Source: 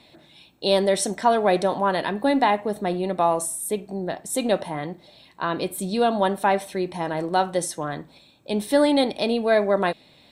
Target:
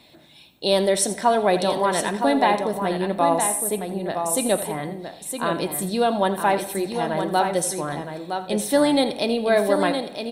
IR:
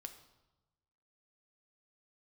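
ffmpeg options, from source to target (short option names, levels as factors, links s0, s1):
-filter_complex "[0:a]highshelf=f=10000:g=10.5,aecho=1:1:964:0.447,asplit=2[s0][s1];[1:a]atrim=start_sample=2205,asetrate=26019,aresample=44100,adelay=83[s2];[s1][s2]afir=irnorm=-1:irlink=0,volume=0.299[s3];[s0][s3]amix=inputs=2:normalize=0"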